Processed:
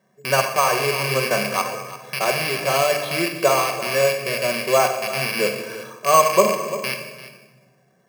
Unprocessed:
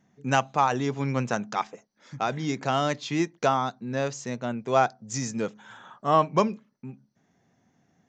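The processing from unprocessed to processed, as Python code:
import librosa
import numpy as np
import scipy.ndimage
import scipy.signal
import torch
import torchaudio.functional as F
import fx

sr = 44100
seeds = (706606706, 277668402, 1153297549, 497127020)

p1 = fx.rattle_buzz(x, sr, strikes_db=-43.0, level_db=-17.0)
p2 = fx.bandpass_edges(p1, sr, low_hz=310.0, high_hz=6600.0)
p3 = fx.low_shelf(p2, sr, hz=490.0, db=6.0)
p4 = p3 + 0.79 * np.pad(p3, (int(1.8 * sr / 1000.0), 0))[:len(p3)]
p5 = p4 + fx.echo_single(p4, sr, ms=344, db=-15.5, dry=0)
p6 = fx.room_shoebox(p5, sr, seeds[0], volume_m3=960.0, walls='mixed', distance_m=1.1)
p7 = fx.rider(p6, sr, range_db=4, speed_s=0.5)
p8 = p6 + F.gain(torch.from_numpy(p7), -2.5).numpy()
p9 = np.repeat(scipy.signal.resample_poly(p8, 1, 6), 6)[:len(p8)]
y = F.gain(torch.from_numpy(p9), -3.5).numpy()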